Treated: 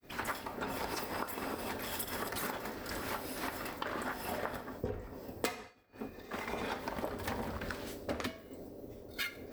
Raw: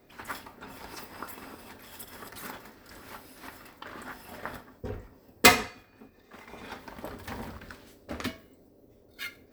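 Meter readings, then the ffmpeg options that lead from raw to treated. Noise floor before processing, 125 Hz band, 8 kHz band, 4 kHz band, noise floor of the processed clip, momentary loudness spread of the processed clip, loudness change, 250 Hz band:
-59 dBFS, -2.0 dB, -9.5 dB, -10.0 dB, -53 dBFS, 10 LU, -10.0 dB, -2.5 dB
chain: -af "adynamicequalizer=threshold=0.00251:dfrequency=550:dqfactor=0.94:tfrequency=550:tqfactor=0.94:attack=5:release=100:ratio=0.375:range=2.5:mode=boostabove:tftype=bell,acompressor=threshold=-43dB:ratio=16,agate=range=-33dB:threshold=-56dB:ratio=3:detection=peak,volume=9dB"

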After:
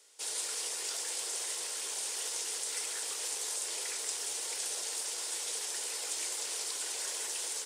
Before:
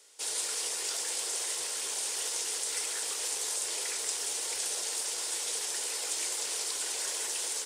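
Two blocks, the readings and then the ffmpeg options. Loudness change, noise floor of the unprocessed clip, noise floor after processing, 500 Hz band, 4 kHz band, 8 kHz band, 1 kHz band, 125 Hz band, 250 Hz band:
-3.0 dB, -36 dBFS, -39 dBFS, -3.5 dB, -3.0 dB, -3.0 dB, -3.0 dB, n/a, -4.0 dB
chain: -af "highpass=f=150:p=1,volume=-3dB"

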